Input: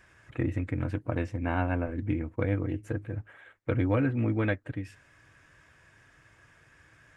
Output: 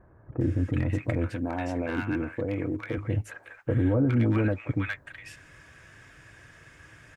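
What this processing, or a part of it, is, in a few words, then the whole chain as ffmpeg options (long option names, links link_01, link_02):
clipper into limiter: -filter_complex "[0:a]asoftclip=type=hard:threshold=-17.5dB,alimiter=limit=-24dB:level=0:latency=1:release=48,asettb=1/sr,asplit=3[link_01][link_02][link_03];[link_01]atrim=end=1.294[link_04];[link_02]atrim=start=1.29:end=2.98,asetpts=PTS-STARTPTS,afade=type=in:duration=0.004:curve=qsin,afade=type=out:start_time=1.686:duration=0.004:curve=qsin,highpass=frequency=240:poles=1[link_05];[link_03]atrim=start=2.976[link_06];[link_04][link_05]acrossfade=duration=0.004:curve1=hsin:curve2=qsin[link_07];[link_07][link_06]acrossfade=duration=0.004:curve1=qsin:curve2=hsin,acrossover=split=1000[link_08][link_09];[link_09]adelay=410[link_10];[link_08][link_10]amix=inputs=2:normalize=0,volume=8dB"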